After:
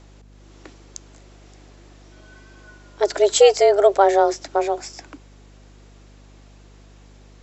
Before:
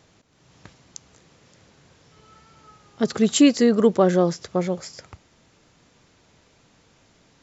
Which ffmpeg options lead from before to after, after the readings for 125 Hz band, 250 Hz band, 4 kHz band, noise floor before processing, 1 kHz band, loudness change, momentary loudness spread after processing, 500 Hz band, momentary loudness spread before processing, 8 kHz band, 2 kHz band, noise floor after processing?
under -10 dB, under -10 dB, +2.5 dB, -60 dBFS, +10.5 dB, +2.5 dB, 12 LU, +6.0 dB, 12 LU, no reading, +3.5 dB, -47 dBFS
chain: -af "afreqshift=200,aeval=exprs='val(0)+0.00355*(sin(2*PI*50*n/s)+sin(2*PI*2*50*n/s)/2+sin(2*PI*3*50*n/s)/3+sin(2*PI*4*50*n/s)/4+sin(2*PI*5*50*n/s)/5)':c=same,volume=1.33"

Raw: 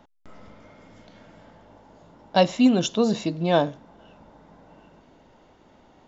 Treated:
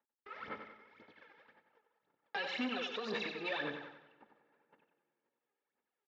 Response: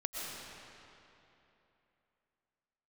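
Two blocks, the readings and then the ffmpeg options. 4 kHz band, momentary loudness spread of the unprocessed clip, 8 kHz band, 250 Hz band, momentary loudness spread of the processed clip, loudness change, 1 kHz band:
-11.0 dB, 7 LU, no reading, -21.5 dB, 16 LU, -17.5 dB, -16.5 dB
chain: -filter_complex "[0:a]agate=range=0.01:threshold=0.00501:ratio=16:detection=peak,equalizer=f=3000:w=0.39:g=8.5,aecho=1:1:2.3:0.42,acompressor=threshold=0.0251:ratio=1.5,alimiter=limit=0.0944:level=0:latency=1,acrossover=split=460|1500[s0][s1][s2];[s0]acompressor=threshold=0.01:ratio=4[s3];[s1]acompressor=threshold=0.0141:ratio=4[s4];[s2]acompressor=threshold=0.0158:ratio=4[s5];[s3][s4][s5]amix=inputs=3:normalize=0,aphaser=in_gain=1:out_gain=1:delay=2.5:decay=0.76:speed=1.9:type=sinusoidal,asoftclip=type=tanh:threshold=0.0398,highpass=230,equalizer=f=230:t=q:w=4:g=6,equalizer=f=420:t=q:w=4:g=4,equalizer=f=1200:t=q:w=4:g=6,equalizer=f=1700:t=q:w=4:g=10,equalizer=f=2400:t=q:w=4:g=7,lowpass=f=4400:w=0.5412,lowpass=f=4400:w=1.3066,aecho=1:1:93|186|279|372|465:0.422|0.186|0.0816|0.0359|0.0158,asplit=2[s6][s7];[1:a]atrim=start_sample=2205,lowpass=1800[s8];[s7][s8]afir=irnorm=-1:irlink=0,volume=0.0562[s9];[s6][s9]amix=inputs=2:normalize=0,volume=0.422"

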